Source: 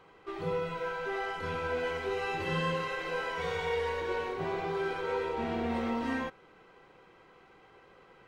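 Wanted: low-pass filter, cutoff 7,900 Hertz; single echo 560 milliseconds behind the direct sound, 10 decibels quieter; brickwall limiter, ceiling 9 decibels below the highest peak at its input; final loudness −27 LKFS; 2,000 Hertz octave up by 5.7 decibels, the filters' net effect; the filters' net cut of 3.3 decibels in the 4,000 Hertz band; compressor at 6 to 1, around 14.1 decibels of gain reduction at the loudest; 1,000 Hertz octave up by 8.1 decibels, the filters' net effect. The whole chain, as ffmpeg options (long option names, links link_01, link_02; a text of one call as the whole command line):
ffmpeg -i in.wav -af "lowpass=7900,equalizer=frequency=1000:width_type=o:gain=8.5,equalizer=frequency=2000:width_type=o:gain=6,equalizer=frequency=4000:width_type=o:gain=-8.5,acompressor=threshold=-39dB:ratio=6,alimiter=level_in=14.5dB:limit=-24dB:level=0:latency=1,volume=-14.5dB,aecho=1:1:560:0.316,volume=19.5dB" out.wav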